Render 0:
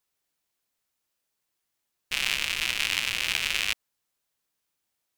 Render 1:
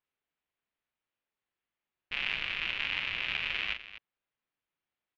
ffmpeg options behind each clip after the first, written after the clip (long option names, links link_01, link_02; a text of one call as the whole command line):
ffmpeg -i in.wav -filter_complex "[0:a]lowpass=frequency=2900:width=0.5412,lowpass=frequency=2900:width=1.3066,aemphasis=mode=production:type=cd,asplit=2[link_01][link_02];[link_02]aecho=0:1:41|250:0.422|0.2[link_03];[link_01][link_03]amix=inputs=2:normalize=0,volume=-5.5dB" out.wav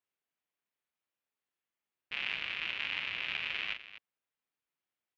ffmpeg -i in.wav -af "highpass=frequency=130:poles=1,volume=-3dB" out.wav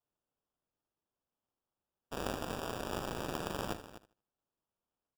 ffmpeg -i in.wav -af "acrusher=samples=21:mix=1:aa=0.000001,aecho=1:1:77|154|231:0.188|0.0452|0.0108,volume=-2dB" out.wav